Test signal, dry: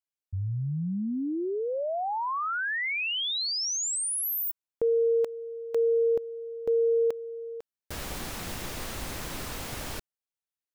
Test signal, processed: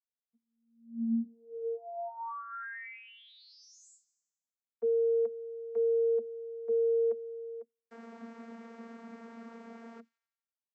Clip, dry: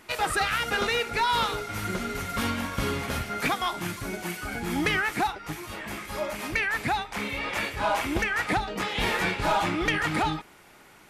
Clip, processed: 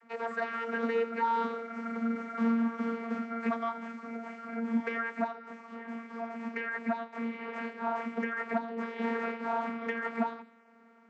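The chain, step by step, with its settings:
high shelf with overshoot 2,400 Hz −8.5 dB, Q 1.5
channel vocoder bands 32, saw 230 Hz
delay with a high-pass on its return 87 ms, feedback 57%, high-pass 4,700 Hz, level −12 dB
level −4.5 dB

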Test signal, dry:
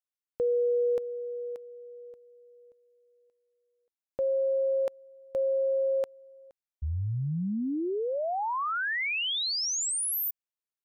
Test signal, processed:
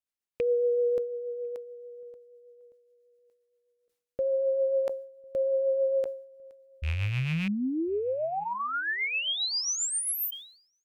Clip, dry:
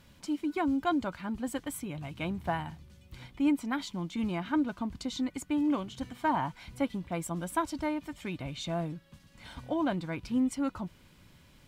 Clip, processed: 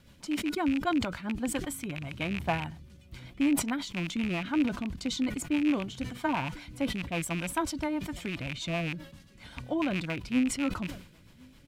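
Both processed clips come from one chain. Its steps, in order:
loose part that buzzes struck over −36 dBFS, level −25 dBFS
rotating-speaker cabinet horn 7.5 Hz
slap from a distant wall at 180 metres, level −30 dB
level that may fall only so fast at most 97 dB per second
level +2.5 dB

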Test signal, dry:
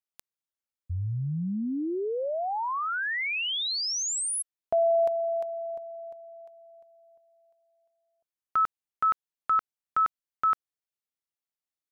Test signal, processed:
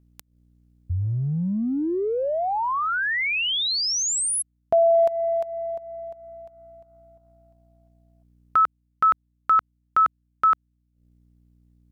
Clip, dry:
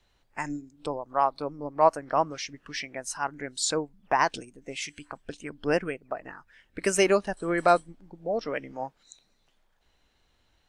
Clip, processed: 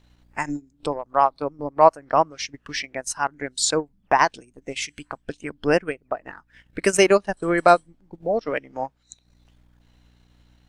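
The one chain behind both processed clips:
mains hum 60 Hz, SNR 33 dB
transient designer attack +1 dB, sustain −11 dB
level +5.5 dB

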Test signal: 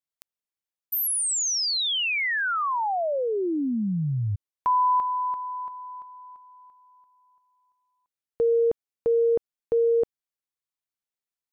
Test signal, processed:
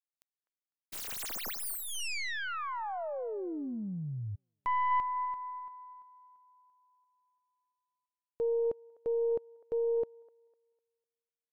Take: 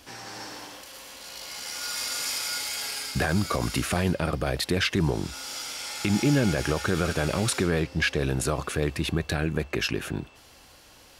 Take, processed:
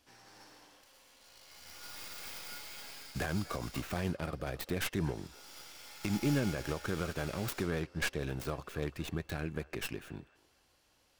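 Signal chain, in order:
stylus tracing distortion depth 0.27 ms
on a send: delay with a band-pass on its return 251 ms, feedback 31%, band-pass 940 Hz, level −13.5 dB
on the sum: expander for the loud parts 1.5 to 1, over −39 dBFS
level −8 dB

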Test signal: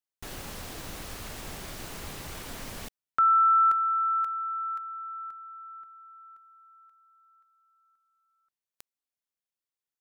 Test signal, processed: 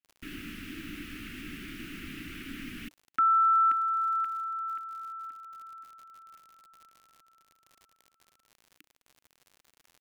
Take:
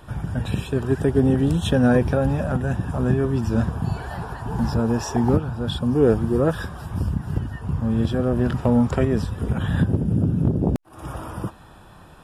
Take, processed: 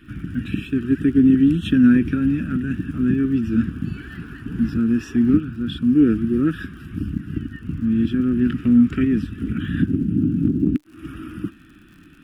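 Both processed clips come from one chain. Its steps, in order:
drawn EQ curve 130 Hz 0 dB, 300 Hz +15 dB, 550 Hz −21 dB, 930 Hz −24 dB, 1,300 Hz +3 dB, 2,700 Hz +10 dB, 4,000 Hz −3 dB, 7,400 Hz −8 dB, 12,000 Hz −3 dB
surface crackle 80 per second −38 dBFS
level −5.5 dB

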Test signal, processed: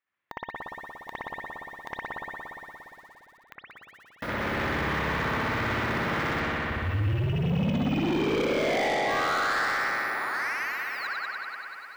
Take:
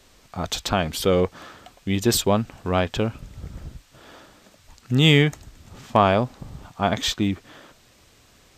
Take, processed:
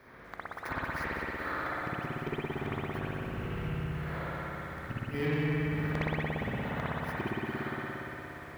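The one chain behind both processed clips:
samples in bit-reversed order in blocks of 16 samples
high-shelf EQ 7,600 Hz +11 dB
brickwall limiter −5 dBFS
high-pass filter 85 Hz 12 dB per octave
downward compressor 8 to 1, threshold −23 dBFS
drawn EQ curve 700 Hz 0 dB, 1,900 Hz +10 dB, 8,500 Hz −29 dB
gate with flip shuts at −21 dBFS, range −29 dB
spring reverb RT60 3.5 s, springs 58 ms, chirp 45 ms, DRR −8.5 dB
soft clipping −24 dBFS
feedback echo at a low word length 187 ms, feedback 35%, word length 9 bits, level −9 dB

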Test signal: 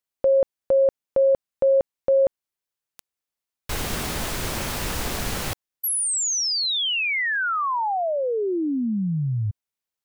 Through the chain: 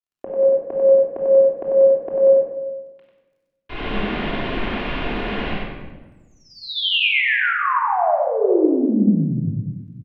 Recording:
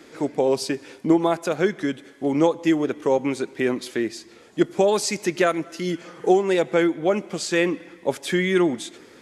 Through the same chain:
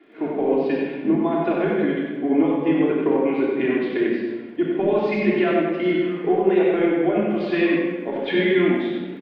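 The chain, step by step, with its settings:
Butterworth low-pass 3,200 Hz 36 dB per octave
low shelf with overshoot 160 Hz −8.5 dB, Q 1.5
notch filter 1,300 Hz, Q 12
downward compressor, threshold −23 dBFS
surface crackle 21 per second −52 dBFS
single-tap delay 94 ms −4.5 dB
rectangular room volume 1,800 cubic metres, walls mixed, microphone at 3.2 metres
multiband upward and downward expander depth 40%

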